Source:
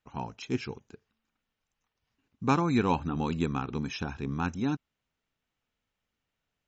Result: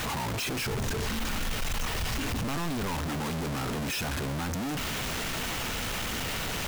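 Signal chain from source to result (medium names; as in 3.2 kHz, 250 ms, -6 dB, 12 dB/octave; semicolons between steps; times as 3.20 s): one-bit comparator; 0.62–2.95 s: bass shelf 76 Hz +11.5 dB; saturation -27 dBFS, distortion -18 dB; trim +2.5 dB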